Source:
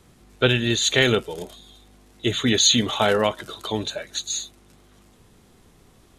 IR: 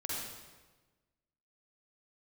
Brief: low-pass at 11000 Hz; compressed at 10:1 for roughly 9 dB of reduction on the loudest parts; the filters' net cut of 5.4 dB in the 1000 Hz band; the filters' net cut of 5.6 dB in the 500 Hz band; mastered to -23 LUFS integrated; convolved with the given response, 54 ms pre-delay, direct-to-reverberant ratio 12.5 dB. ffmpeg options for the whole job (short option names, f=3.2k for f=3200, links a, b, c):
-filter_complex "[0:a]lowpass=11k,equalizer=f=500:t=o:g=-6,equalizer=f=1k:t=o:g=-5.5,acompressor=threshold=-23dB:ratio=10,asplit=2[a][b];[1:a]atrim=start_sample=2205,adelay=54[c];[b][c]afir=irnorm=-1:irlink=0,volume=-15dB[d];[a][d]amix=inputs=2:normalize=0,volume=5.5dB"